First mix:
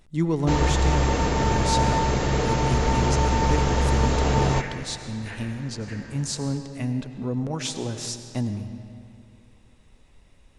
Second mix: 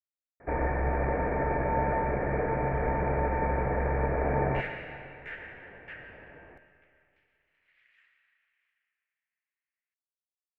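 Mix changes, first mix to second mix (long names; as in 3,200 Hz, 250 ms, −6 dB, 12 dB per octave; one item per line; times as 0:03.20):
speech: muted
first sound: add Chebyshev low-pass with heavy ripple 2,400 Hz, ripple 9 dB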